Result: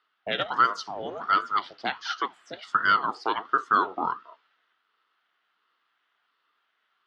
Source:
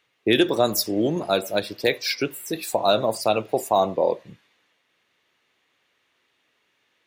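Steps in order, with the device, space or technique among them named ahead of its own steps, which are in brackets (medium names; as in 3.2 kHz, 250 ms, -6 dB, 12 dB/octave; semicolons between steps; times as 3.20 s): voice changer toy (ring modulator with a swept carrier 500 Hz, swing 65%, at 1.4 Hz; cabinet simulation 470–4200 Hz, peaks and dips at 560 Hz -9 dB, 850 Hz -4 dB, 1.3 kHz +8 dB, 2.4 kHz -9 dB, 4 kHz -5 dB)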